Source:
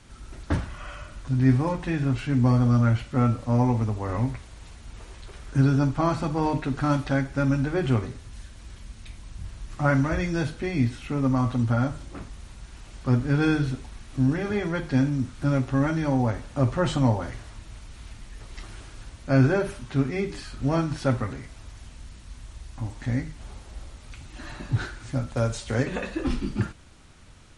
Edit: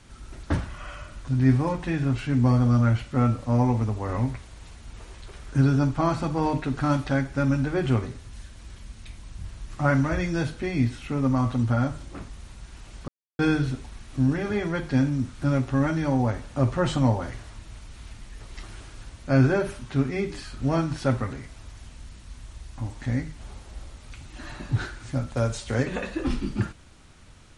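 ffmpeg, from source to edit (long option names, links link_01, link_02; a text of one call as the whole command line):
ffmpeg -i in.wav -filter_complex "[0:a]asplit=3[link_01][link_02][link_03];[link_01]atrim=end=13.08,asetpts=PTS-STARTPTS,afade=type=out:start_time=13.076:duration=0.004:curve=hsin[link_04];[link_02]atrim=start=13.08:end=13.39,asetpts=PTS-STARTPTS,volume=0[link_05];[link_03]atrim=start=13.39,asetpts=PTS-STARTPTS,afade=type=in:duration=0.004:curve=hsin[link_06];[link_04][link_05][link_06]concat=n=3:v=0:a=1" out.wav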